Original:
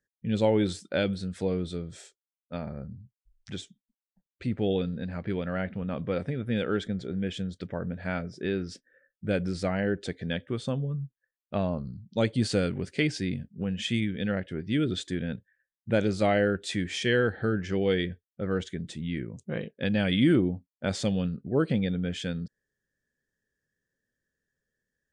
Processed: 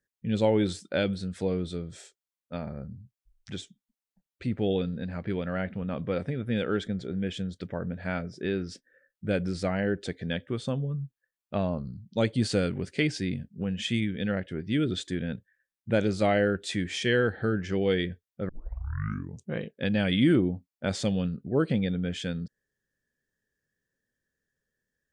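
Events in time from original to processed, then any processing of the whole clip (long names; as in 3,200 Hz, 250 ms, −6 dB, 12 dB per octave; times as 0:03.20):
0:18.49: tape start 0.94 s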